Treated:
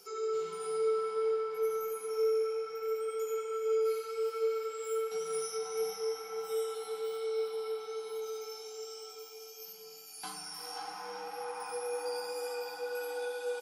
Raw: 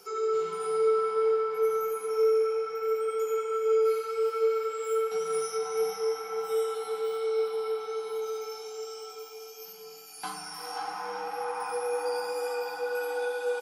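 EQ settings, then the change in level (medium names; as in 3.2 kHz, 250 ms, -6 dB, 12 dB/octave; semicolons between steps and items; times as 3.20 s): FFT filter 410 Hz 0 dB, 1.2 kHz -3 dB, 4.6 kHz +4 dB; -5.5 dB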